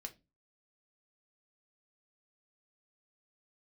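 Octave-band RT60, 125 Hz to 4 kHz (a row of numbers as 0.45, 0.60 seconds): 0.45, 0.40, 0.30, 0.20, 0.20, 0.20 seconds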